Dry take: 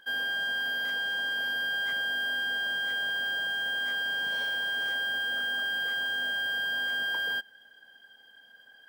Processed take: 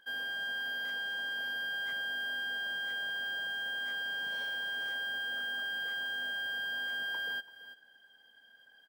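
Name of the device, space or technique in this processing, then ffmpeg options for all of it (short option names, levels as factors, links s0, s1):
ducked delay: -filter_complex "[0:a]asplit=3[s0][s1][s2];[s1]adelay=335,volume=0.398[s3];[s2]apad=whole_len=406527[s4];[s3][s4]sidechaincompress=threshold=0.0112:ratio=8:attack=16:release=709[s5];[s0][s5]amix=inputs=2:normalize=0,volume=0.473"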